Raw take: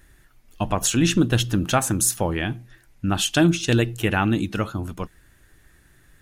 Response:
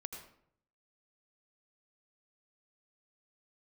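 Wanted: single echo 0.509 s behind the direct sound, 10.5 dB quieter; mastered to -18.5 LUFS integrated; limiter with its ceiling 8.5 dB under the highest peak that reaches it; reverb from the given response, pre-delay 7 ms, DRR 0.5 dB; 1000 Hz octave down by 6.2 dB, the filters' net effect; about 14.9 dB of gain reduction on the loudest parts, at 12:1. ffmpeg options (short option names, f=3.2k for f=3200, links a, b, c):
-filter_complex "[0:a]equalizer=f=1k:t=o:g=-9,acompressor=threshold=-29dB:ratio=12,alimiter=level_in=2dB:limit=-24dB:level=0:latency=1,volume=-2dB,aecho=1:1:509:0.299,asplit=2[a][b];[1:a]atrim=start_sample=2205,adelay=7[c];[b][c]afir=irnorm=-1:irlink=0,volume=2dB[d];[a][d]amix=inputs=2:normalize=0,volume=15dB"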